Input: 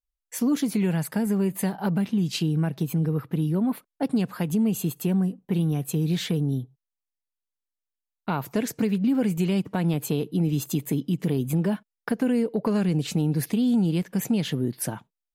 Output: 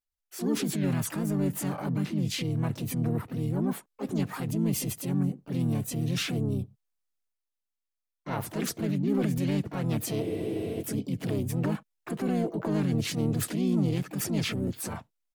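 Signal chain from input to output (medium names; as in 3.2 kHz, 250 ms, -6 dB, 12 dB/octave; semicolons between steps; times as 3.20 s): transient shaper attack -6 dB, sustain +6 dB; harmony voices -5 st -1 dB, +3 st -17 dB, +7 st -5 dB; spectral freeze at 10.23 s, 0.57 s; trim -7 dB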